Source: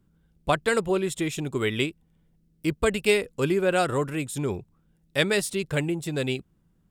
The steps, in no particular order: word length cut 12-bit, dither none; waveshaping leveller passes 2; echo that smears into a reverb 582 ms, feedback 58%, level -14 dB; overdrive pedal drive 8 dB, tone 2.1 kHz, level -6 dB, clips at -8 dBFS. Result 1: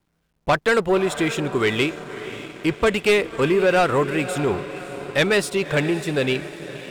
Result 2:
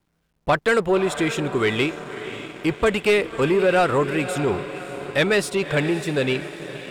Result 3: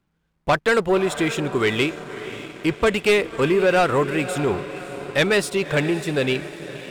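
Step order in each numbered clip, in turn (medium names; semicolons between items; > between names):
overdrive pedal > echo that smears into a reverb > waveshaping leveller > word length cut; echo that smears into a reverb > waveshaping leveller > overdrive pedal > word length cut; word length cut > overdrive pedal > echo that smears into a reverb > waveshaping leveller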